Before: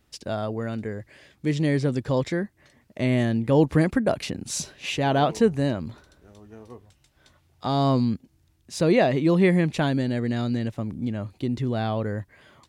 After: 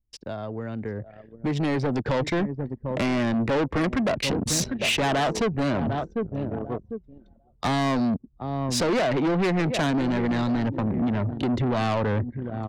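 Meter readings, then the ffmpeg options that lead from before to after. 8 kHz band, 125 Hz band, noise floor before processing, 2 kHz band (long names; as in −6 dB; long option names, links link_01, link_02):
+4.0 dB, −2.0 dB, −65 dBFS, +2.0 dB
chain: -filter_complex "[0:a]aecho=1:1:748|1496|2244:0.112|0.0404|0.0145,acrossover=split=210|420|1700[link_01][link_02][link_03][link_04];[link_01]alimiter=level_in=4dB:limit=-24dB:level=0:latency=1:release=318,volume=-4dB[link_05];[link_05][link_02][link_03][link_04]amix=inputs=4:normalize=0,acompressor=threshold=-30dB:ratio=2.5,anlmdn=0.251,dynaudnorm=framelen=350:gausssize=9:maxgain=16dB,aemphasis=mode=reproduction:type=75kf,asoftclip=type=tanh:threshold=-20.5dB,highshelf=frequency=4100:gain=7.5"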